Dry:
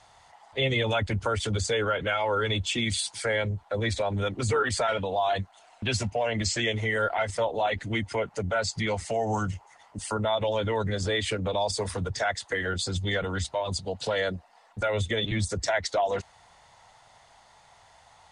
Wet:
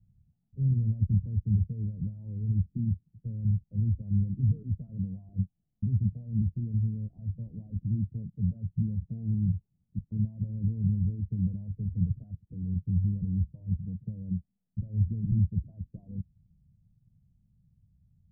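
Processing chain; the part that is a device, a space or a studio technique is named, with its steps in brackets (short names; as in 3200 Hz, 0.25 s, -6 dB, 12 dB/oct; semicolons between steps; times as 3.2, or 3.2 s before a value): the neighbour's flat through the wall (LPF 170 Hz 24 dB/oct; bell 190 Hz +8 dB 0.97 oct); gain +3 dB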